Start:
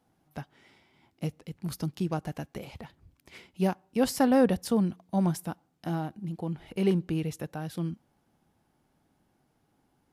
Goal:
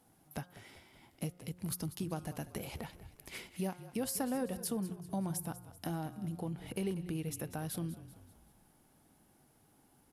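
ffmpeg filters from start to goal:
-filter_complex "[0:a]equalizer=f=11k:w=0.95:g=12.5,bandreject=f=178.5:t=h:w=4,bandreject=f=357:t=h:w=4,bandreject=f=535.5:t=h:w=4,bandreject=f=714:t=h:w=4,bandreject=f=892.5:t=h:w=4,bandreject=f=1.071k:t=h:w=4,bandreject=f=1.2495k:t=h:w=4,bandreject=f=1.428k:t=h:w=4,bandreject=f=1.6065k:t=h:w=4,acompressor=threshold=-41dB:ratio=3,asplit=2[a][b];[b]asplit=5[c][d][e][f][g];[c]adelay=192,afreqshift=-35,volume=-15dB[h];[d]adelay=384,afreqshift=-70,volume=-21.2dB[i];[e]adelay=576,afreqshift=-105,volume=-27.4dB[j];[f]adelay=768,afreqshift=-140,volume=-33.6dB[k];[g]adelay=960,afreqshift=-175,volume=-39.8dB[l];[h][i][j][k][l]amix=inputs=5:normalize=0[m];[a][m]amix=inputs=2:normalize=0,volume=2.5dB"

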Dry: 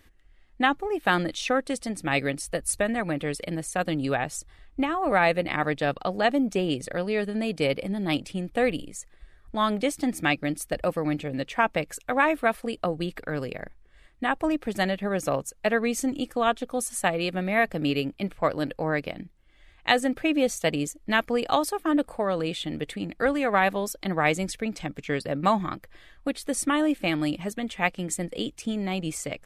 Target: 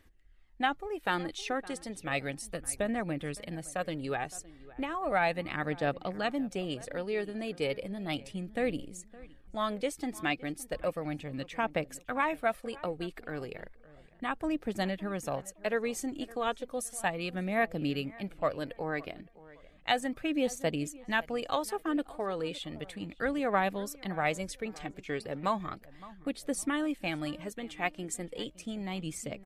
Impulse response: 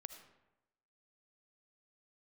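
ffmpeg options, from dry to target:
-filter_complex "[0:a]asplit=2[a][b];[b]adelay=564,lowpass=f=2.2k:p=1,volume=-19dB,asplit=2[c][d];[d]adelay=564,lowpass=f=2.2k:p=1,volume=0.32,asplit=2[e][f];[f]adelay=564,lowpass=f=2.2k:p=1,volume=0.32[g];[c][e][g]amix=inputs=3:normalize=0[h];[a][h]amix=inputs=2:normalize=0,aphaser=in_gain=1:out_gain=1:delay=2.9:decay=0.35:speed=0.34:type=triangular,volume=-8dB"

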